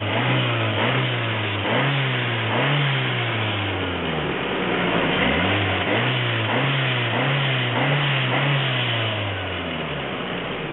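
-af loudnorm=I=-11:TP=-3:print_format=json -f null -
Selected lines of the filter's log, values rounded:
"input_i" : "-21.6",
"input_tp" : "-8.3",
"input_lra" : "2.3",
"input_thresh" : "-31.6",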